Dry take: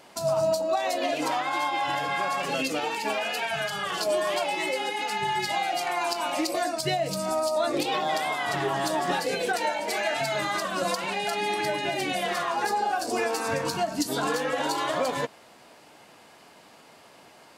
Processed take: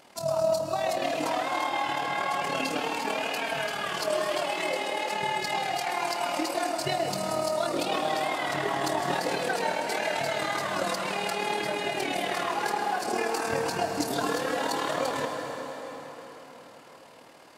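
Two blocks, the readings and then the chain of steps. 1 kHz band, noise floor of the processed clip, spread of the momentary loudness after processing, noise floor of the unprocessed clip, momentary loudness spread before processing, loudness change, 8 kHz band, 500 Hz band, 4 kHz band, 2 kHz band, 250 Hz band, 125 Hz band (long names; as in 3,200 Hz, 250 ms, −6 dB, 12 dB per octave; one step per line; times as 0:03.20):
−1.5 dB, −50 dBFS, 2 LU, −53 dBFS, 2 LU, −1.5 dB, −2.0 dB, −1.0 dB, −2.0 dB, −1.5 dB, −1.5 dB, −1.5 dB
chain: amplitude modulation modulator 38 Hz, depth 50%
dense smooth reverb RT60 4.9 s, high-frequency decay 0.75×, pre-delay 100 ms, DRR 3.5 dB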